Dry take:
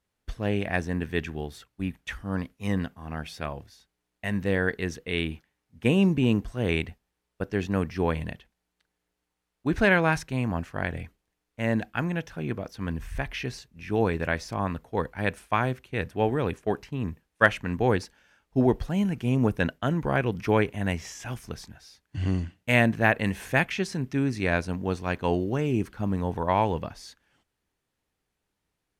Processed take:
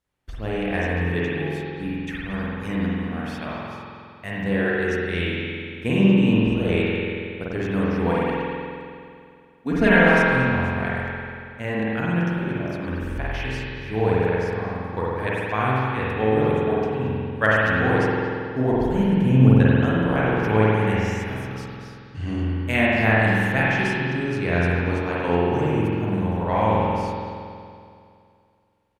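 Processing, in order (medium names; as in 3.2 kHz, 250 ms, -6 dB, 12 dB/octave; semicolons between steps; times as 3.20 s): 8.05–10.04 s: comb 4.3 ms, depth 88%; 14.26–14.97 s: compression 3:1, threshold -33 dBFS, peak gain reduction 9.5 dB; 18.99–19.56 s: bass shelf 260 Hz +7.5 dB; speakerphone echo 230 ms, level -8 dB; spring tank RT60 2.4 s, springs 46 ms, chirp 65 ms, DRR -7 dB; trim -3 dB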